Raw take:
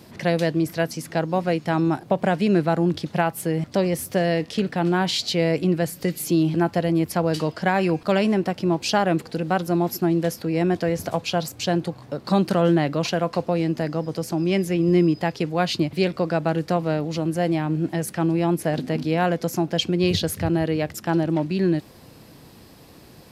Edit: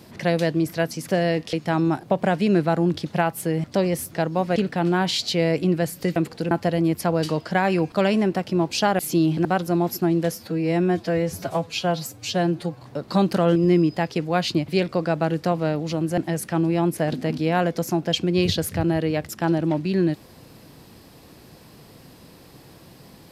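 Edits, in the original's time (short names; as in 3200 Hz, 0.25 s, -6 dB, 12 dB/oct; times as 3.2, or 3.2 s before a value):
1.08–1.53 swap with 4.11–4.56
6.16–6.62 swap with 9.1–9.45
10.32–11.99 stretch 1.5×
12.72–14.8 cut
17.42–17.83 cut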